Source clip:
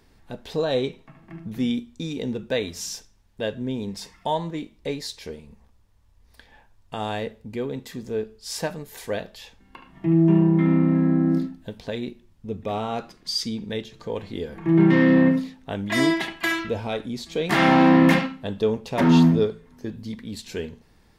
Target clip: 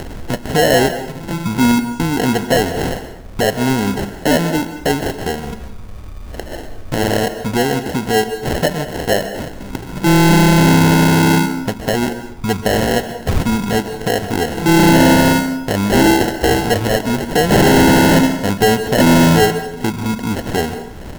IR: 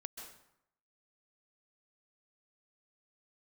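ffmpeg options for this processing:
-filter_complex "[0:a]acrusher=samples=37:mix=1:aa=0.000001,acompressor=mode=upward:threshold=-26dB:ratio=2.5,asoftclip=type=hard:threshold=-20dB,asplit=2[link_01][link_02];[1:a]atrim=start_sample=2205[link_03];[link_02][link_03]afir=irnorm=-1:irlink=0,volume=2dB[link_04];[link_01][link_04]amix=inputs=2:normalize=0,volume=7.5dB"

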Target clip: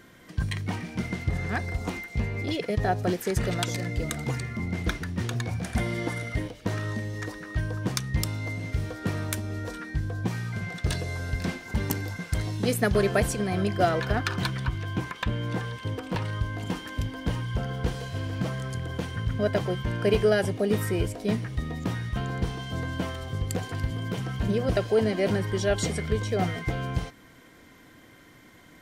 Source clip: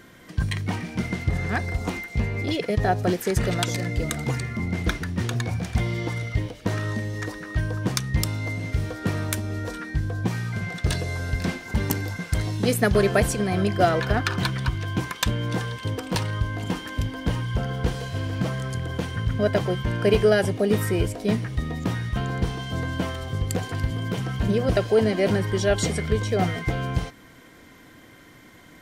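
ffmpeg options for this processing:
ffmpeg -i in.wav -filter_complex "[0:a]asettb=1/sr,asplit=3[link_01][link_02][link_03];[link_01]atrim=end=5.644[link_04];[link_02]atrim=start=5.64:end=6.48,asetpts=PTS-STARTPTS,afade=type=in:duration=0.004:curve=qsin,afade=type=out:start_time=0.836:duration=0.004:curve=qsin,equalizer=frequency=100:width_type=o:width=0.67:gain=-4,equalizer=frequency=250:width_type=o:width=0.67:gain=6,equalizer=frequency=630:width_type=o:width=0.67:gain=5,equalizer=frequency=1600:width_type=o:width=0.67:gain=6,equalizer=frequency=10000:width_type=o:width=0.67:gain=9[link_05];[link_03]atrim=start=6.476[link_06];[link_04][link_05]acrossfade=duration=0.004:curve1=hsin:curve2=qsin[link_07];[link_07][link_06]acrossfade=duration=0.004:curve1=qsin:curve2=hsin,asettb=1/sr,asplit=3[link_08][link_09][link_10];[link_08]atrim=end=14.624[link_11];[link_09]atrim=start=14.62:end=16.25,asetpts=PTS-STARTPTS,afade=type=in:duration=0.004:curve=qsin,afade=type=out:start_time=1.626:duration=0.004:curve=qsin,acrossover=split=3200[link_12][link_13];[link_13]acompressor=threshold=-45dB:ratio=4:attack=1:release=60[link_14];[link_12][link_14]amix=inputs=2:normalize=0[link_15];[link_10]atrim=start=16.246[link_16];[link_11][link_15]acrossfade=duration=0.004:curve1=hsin:curve2=qsin[link_17];[link_17][link_16]acrossfade=duration=0.004:curve1=qsin:curve2=hsin,volume=-3.5dB" out.wav

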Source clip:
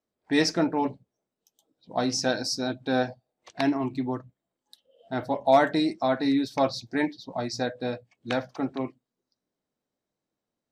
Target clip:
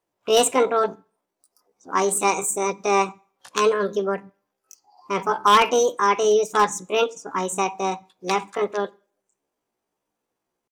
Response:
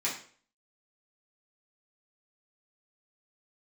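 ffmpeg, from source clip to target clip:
-filter_complex "[0:a]asetrate=68011,aresample=44100,atempo=0.64842,aeval=exprs='0.211*(abs(mod(val(0)/0.211+3,4)-2)-1)':channel_layout=same,asplit=2[link_01][link_02];[1:a]atrim=start_sample=2205,adelay=24[link_03];[link_02][link_03]afir=irnorm=-1:irlink=0,volume=-29dB[link_04];[link_01][link_04]amix=inputs=2:normalize=0,volume=5.5dB"

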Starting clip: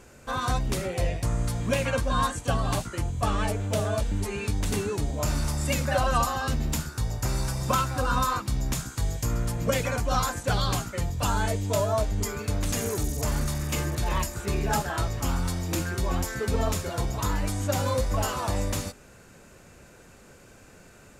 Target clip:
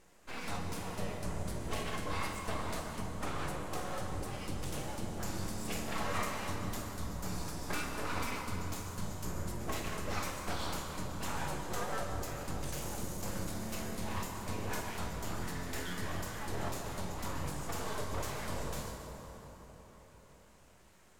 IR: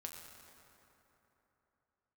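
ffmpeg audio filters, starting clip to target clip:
-filter_complex "[0:a]asettb=1/sr,asplit=3[link_01][link_02][link_03];[link_01]atrim=end=15.414[link_04];[link_02]atrim=start=15.41:end=16.12,asetpts=PTS-STARTPTS,afade=type=in:duration=0.004:curve=qsin,afade=type=out:start_time=0.706:duration=0.004:curve=qsin,equalizer=frequency=1800:width=4.6:gain=15[link_05];[link_03]atrim=start=16.116[link_06];[link_04][link_05]acrossfade=duration=0.004:curve1=hsin:curve2=qsin[link_07];[link_07][link_06]acrossfade=duration=0.004:curve1=qsin:curve2=hsin,aeval=exprs='abs(val(0))':channel_layout=same[link_08];[1:a]atrim=start_sample=2205,asetrate=33075,aresample=44100[link_09];[link_08][link_09]afir=irnorm=-1:irlink=0,volume=-6.5dB"

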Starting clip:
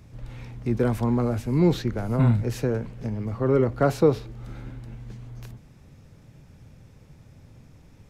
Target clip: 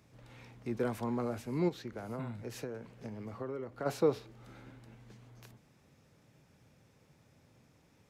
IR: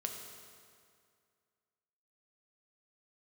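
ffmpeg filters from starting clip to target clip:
-filter_complex "[0:a]highpass=frequency=330:poles=1,asplit=3[link_01][link_02][link_03];[link_01]afade=type=out:start_time=1.68:duration=0.02[link_04];[link_02]acompressor=threshold=-30dB:ratio=6,afade=type=in:start_time=1.68:duration=0.02,afade=type=out:start_time=3.85:duration=0.02[link_05];[link_03]afade=type=in:start_time=3.85:duration=0.02[link_06];[link_04][link_05][link_06]amix=inputs=3:normalize=0,volume=-7dB"

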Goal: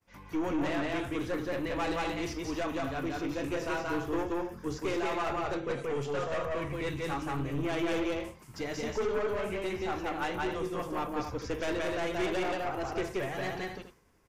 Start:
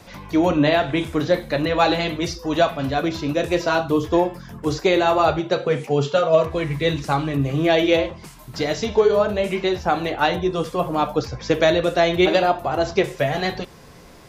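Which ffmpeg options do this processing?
ffmpeg -i in.wav -af "agate=range=-33dB:threshold=-35dB:ratio=3:detection=peak,aecho=1:1:177.8|256.6:0.794|0.282,aeval=exprs='(tanh(6.31*val(0)+0.3)-tanh(0.3))/6.31':channel_layout=same,equalizer=frequency=160:width_type=o:width=0.67:gain=-6,equalizer=frequency=630:width_type=o:width=0.67:gain=-6,equalizer=frequency=4000:width_type=o:width=0.67:gain=-9,volume=-8.5dB" out.wav

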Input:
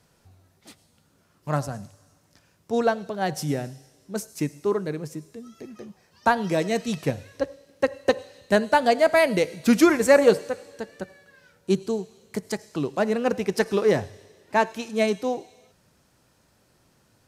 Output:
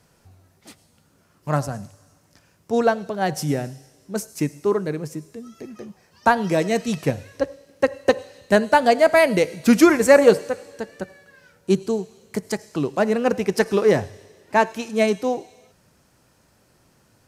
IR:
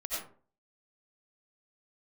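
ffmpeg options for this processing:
-af "equalizer=frequency=3700:width_type=o:width=0.48:gain=-3,volume=3.5dB"

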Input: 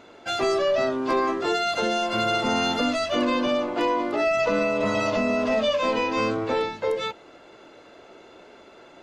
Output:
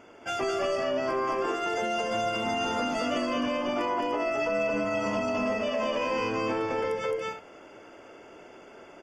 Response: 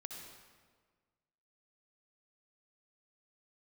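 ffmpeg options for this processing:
-af "aecho=1:1:215.7|282.8:0.891|0.316,alimiter=limit=-16.5dB:level=0:latency=1:release=183,asuperstop=centerf=3900:order=8:qfactor=3.7,volume=-3dB"

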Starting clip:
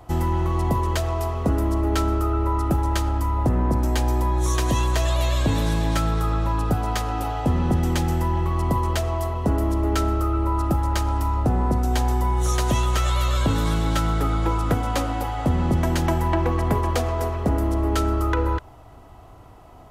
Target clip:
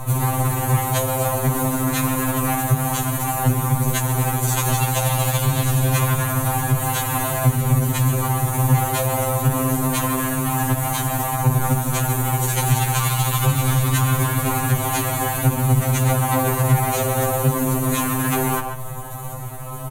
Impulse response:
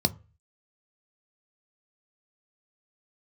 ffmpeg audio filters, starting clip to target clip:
-filter_complex "[0:a]acrossover=split=7800[link_01][link_02];[link_02]acompressor=threshold=-50dB:ratio=4:attack=1:release=60[link_03];[link_01][link_03]amix=inputs=2:normalize=0,aemphasis=mode=reproduction:type=50fm,bandreject=frequency=220:width_type=h:width=4,bandreject=frequency=440:width_type=h:width=4,asplit=3[link_04][link_05][link_06];[link_05]asetrate=35002,aresample=44100,atempo=1.25992,volume=-3dB[link_07];[link_06]asetrate=58866,aresample=44100,atempo=0.749154,volume=-8dB[link_08];[link_04][link_07][link_08]amix=inputs=3:normalize=0,asoftclip=type=tanh:threshold=-22.5dB,acrusher=bits=6:mode=log:mix=0:aa=0.000001,aexciter=amount=5.8:drive=8.9:freq=7000,asplit=2[link_09][link_10];[1:a]atrim=start_sample=2205,highshelf=frequency=8500:gain=7.5[link_11];[link_10][link_11]afir=irnorm=-1:irlink=0,volume=-20dB[link_12];[link_09][link_12]amix=inputs=2:normalize=0,aresample=32000,aresample=44100,asplit=2[link_13][link_14];[link_14]adelay=140,highpass=300,lowpass=3400,asoftclip=type=hard:threshold=-22dB,volume=-11dB[link_15];[link_13][link_15]amix=inputs=2:normalize=0,alimiter=level_in=20.5dB:limit=-1dB:release=50:level=0:latency=1,afftfilt=real='re*2.45*eq(mod(b,6),0)':imag='im*2.45*eq(mod(b,6),0)':win_size=2048:overlap=0.75,volume=-5.5dB"

